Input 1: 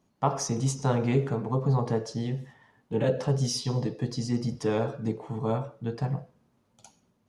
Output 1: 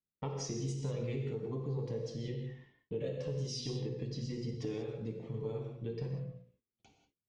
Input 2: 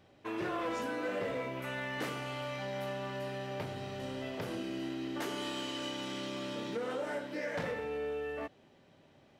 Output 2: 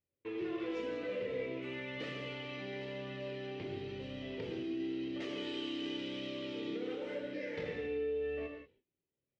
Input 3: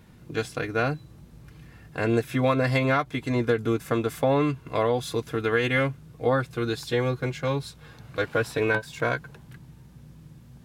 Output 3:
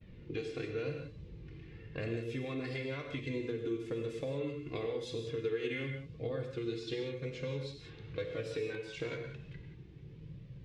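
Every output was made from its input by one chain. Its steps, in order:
notches 60/120/180/240 Hz; gate -56 dBFS, range -28 dB; low-pass opened by the level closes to 2700 Hz, open at -20.5 dBFS; band shelf 1000 Hz -12.5 dB; flange 0.96 Hz, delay 1.5 ms, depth 1.4 ms, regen +35%; air absorption 75 m; compressor 6:1, threshold -41 dBFS; non-linear reverb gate 0.21 s flat, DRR 3 dB; gain +4 dB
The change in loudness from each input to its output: -10.5, -2.0, -13.0 LU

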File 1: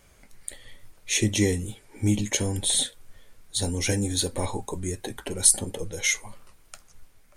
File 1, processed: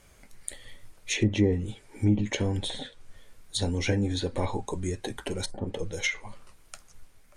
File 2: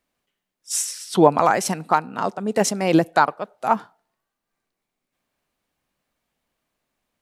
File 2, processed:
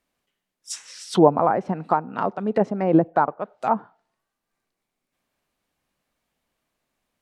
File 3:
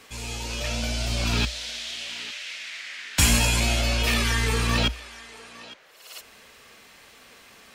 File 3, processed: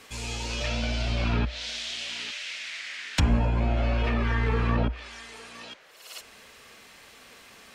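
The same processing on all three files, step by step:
treble ducked by the level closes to 940 Hz, closed at -17.5 dBFS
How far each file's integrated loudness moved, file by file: -4.5, -1.0, -3.5 LU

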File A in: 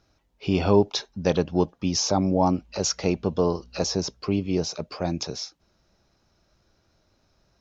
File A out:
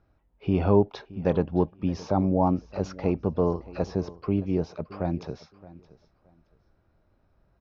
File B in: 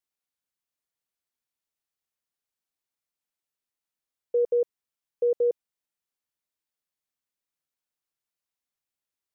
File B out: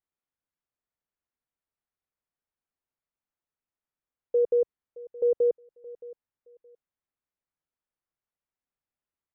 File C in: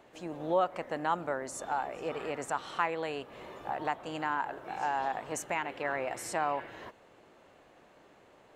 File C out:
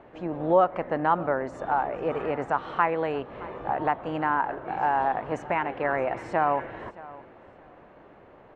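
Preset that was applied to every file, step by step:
LPF 1800 Hz 12 dB/oct; low shelf 110 Hz +6 dB; feedback echo 0.62 s, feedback 22%, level -19.5 dB; match loudness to -27 LUFS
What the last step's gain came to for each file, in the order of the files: -2.0, 0.0, +8.0 dB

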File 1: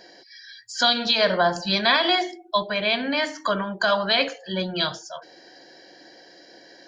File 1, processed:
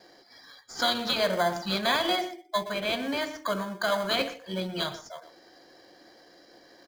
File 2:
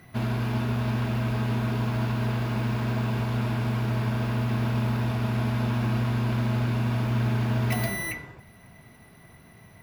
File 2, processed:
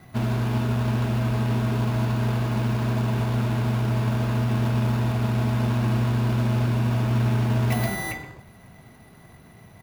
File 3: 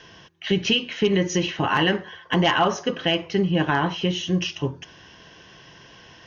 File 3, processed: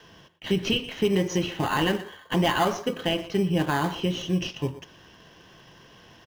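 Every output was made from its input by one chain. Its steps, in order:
speakerphone echo 0.12 s, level -13 dB; gate with hold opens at -46 dBFS; in parallel at -6.5 dB: sample-and-hold 16×; on the sum: normalise peaks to -12 dBFS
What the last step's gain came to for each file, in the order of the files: -8.0, 0.0, -6.0 dB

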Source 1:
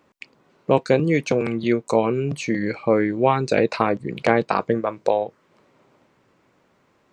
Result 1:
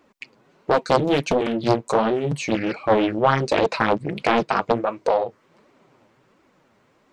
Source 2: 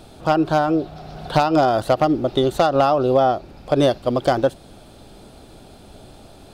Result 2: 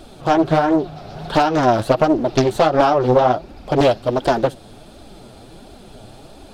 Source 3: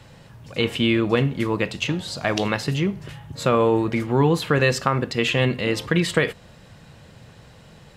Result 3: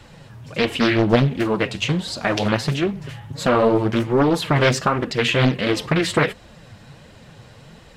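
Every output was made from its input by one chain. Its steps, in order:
in parallel at -6.5 dB: soft clip -13.5 dBFS; on the sum: flange 1.4 Hz, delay 2.5 ms, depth 7.6 ms, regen +9%; Doppler distortion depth 0.82 ms; normalise peaks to -3 dBFS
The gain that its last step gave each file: +1.5, +2.5, +2.5 dB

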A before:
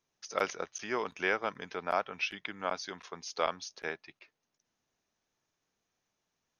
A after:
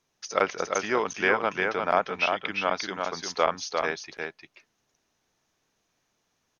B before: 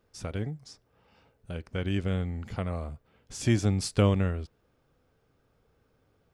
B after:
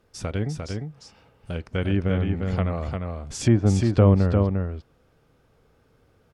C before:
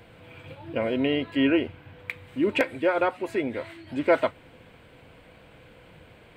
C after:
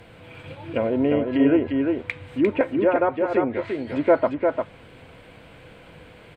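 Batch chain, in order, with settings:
treble ducked by the level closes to 1200 Hz, closed at -23 dBFS; echo 0.35 s -4.5 dB; normalise peaks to -6 dBFS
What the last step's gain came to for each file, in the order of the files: +7.5, +6.0, +4.0 dB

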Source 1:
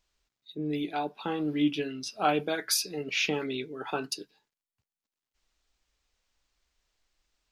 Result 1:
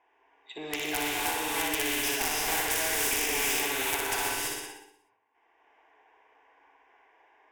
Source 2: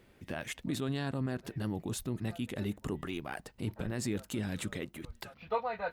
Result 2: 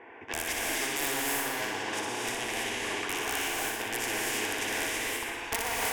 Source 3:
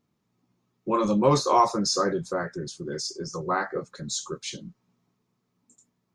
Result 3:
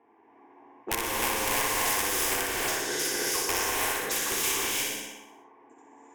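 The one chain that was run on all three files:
self-modulated delay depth 0.26 ms; HPF 180 Hz 12 dB/oct; three-band isolator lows -22 dB, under 520 Hz, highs -18 dB, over 7500 Hz; compressor 8:1, threshold -38 dBFS; wrapped overs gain 31 dB; low-pass opened by the level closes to 940 Hz, open at -40 dBFS; fixed phaser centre 860 Hz, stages 8; soft clip -34 dBFS; on a send: flutter echo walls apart 10.4 m, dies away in 0.66 s; on the sum: non-linear reverb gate 0.36 s rising, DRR -5 dB; spectral compressor 2:1; normalise peaks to -12 dBFS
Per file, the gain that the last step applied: +14.5, +16.0, +14.0 dB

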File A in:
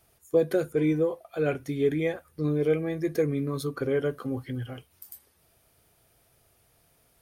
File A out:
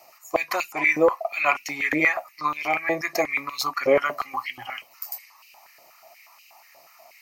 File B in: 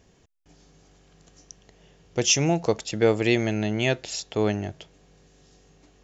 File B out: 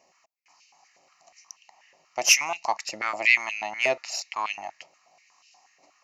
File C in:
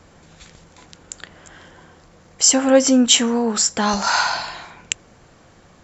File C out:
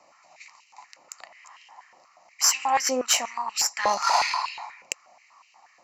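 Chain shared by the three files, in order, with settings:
fixed phaser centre 2300 Hz, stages 8; added harmonics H 4 -22 dB, 8 -30 dB, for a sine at -2 dBFS; stepped high-pass 8.3 Hz 520–2700 Hz; match loudness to -24 LUFS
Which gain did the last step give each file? +16.0, +1.5, -4.5 dB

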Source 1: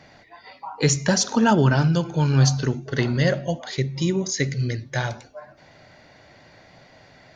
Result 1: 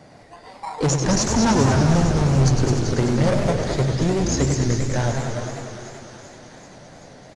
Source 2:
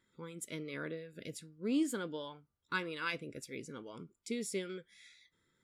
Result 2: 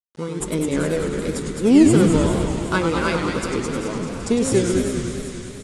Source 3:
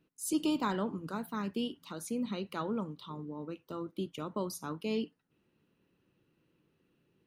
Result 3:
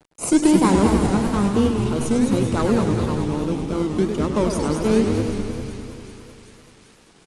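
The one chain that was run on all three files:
HPF 120 Hz 6 dB/oct; bell 2700 Hz -10.5 dB 1.9 oct; in parallel at -7.5 dB: decimation with a swept rate 20×, swing 60% 1.1 Hz; on the sum: thin delay 0.385 s, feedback 70%, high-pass 1500 Hz, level -12.5 dB; bit-crush 11-bit; tube stage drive 21 dB, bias 0.35; on a send: frequency-shifting echo 0.214 s, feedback 49%, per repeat -120 Hz, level -7 dB; on the sum: downsampling 22050 Hz; warbling echo 0.1 s, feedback 78%, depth 178 cents, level -7 dB; match loudness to -20 LUFS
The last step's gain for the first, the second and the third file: +5.5, +19.0, +15.0 dB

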